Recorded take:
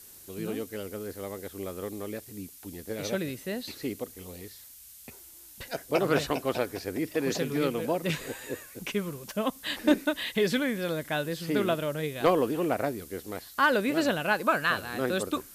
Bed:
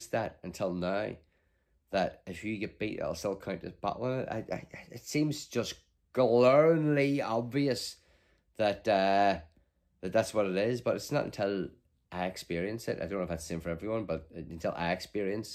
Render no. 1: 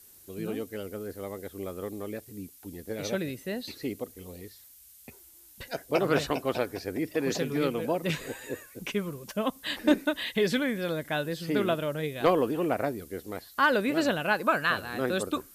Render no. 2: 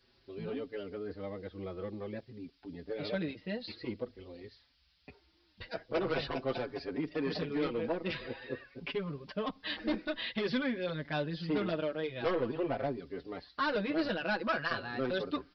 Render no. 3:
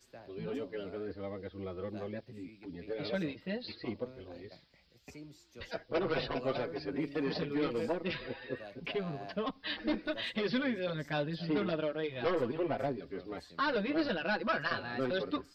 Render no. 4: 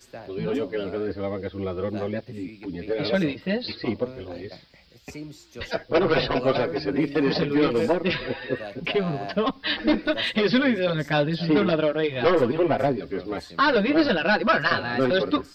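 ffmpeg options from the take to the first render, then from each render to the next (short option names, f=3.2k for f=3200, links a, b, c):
-af "afftdn=nr=6:nf=-50"
-filter_complex "[0:a]aresample=11025,asoftclip=type=tanh:threshold=-24dB,aresample=44100,asplit=2[a][b];[b]adelay=5.6,afreqshift=0.48[c];[a][c]amix=inputs=2:normalize=1"
-filter_complex "[1:a]volume=-20.5dB[a];[0:a][a]amix=inputs=2:normalize=0"
-af "volume=12dB"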